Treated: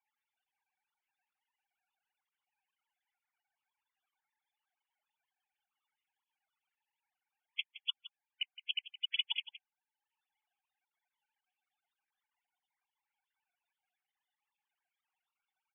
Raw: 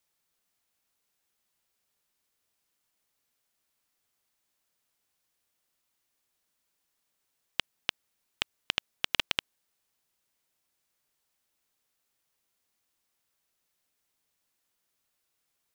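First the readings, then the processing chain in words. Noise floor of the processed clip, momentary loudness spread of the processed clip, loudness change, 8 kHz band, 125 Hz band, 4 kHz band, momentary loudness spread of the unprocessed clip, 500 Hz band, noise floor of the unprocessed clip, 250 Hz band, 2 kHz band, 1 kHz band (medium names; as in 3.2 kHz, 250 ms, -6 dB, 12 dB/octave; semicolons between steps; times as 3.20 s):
under -85 dBFS, 18 LU, -5.0 dB, under -25 dB, under -40 dB, -3.0 dB, 7 LU, under -40 dB, -80 dBFS, under -40 dB, -8.0 dB, -21.5 dB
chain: formants replaced by sine waves; frequency shift +14 Hz; transient shaper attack 0 dB, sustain -5 dB; loudest bins only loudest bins 32; delay 167 ms -15 dB; trim -4 dB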